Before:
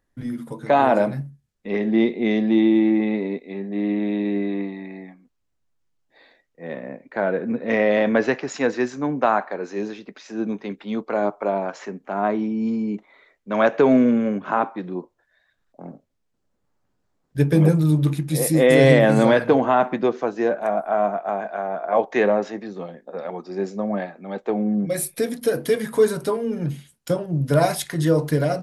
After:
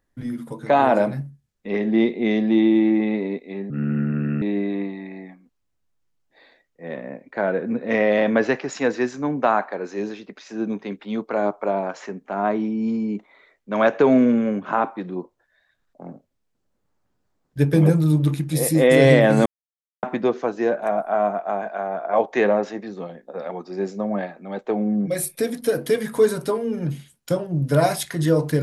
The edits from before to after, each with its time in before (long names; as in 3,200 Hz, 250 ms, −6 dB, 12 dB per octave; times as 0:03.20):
0:03.70–0:04.21: play speed 71%
0:19.25–0:19.82: silence